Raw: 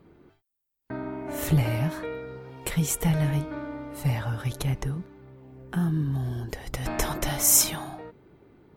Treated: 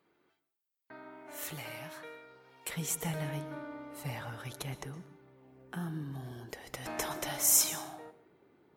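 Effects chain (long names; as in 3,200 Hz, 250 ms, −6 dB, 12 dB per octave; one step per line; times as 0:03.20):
high-pass filter 1,400 Hz 6 dB per octave, from 0:02.69 350 Hz
dense smooth reverb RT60 0.5 s, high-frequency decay 0.95×, pre-delay 105 ms, DRR 15 dB
level −6 dB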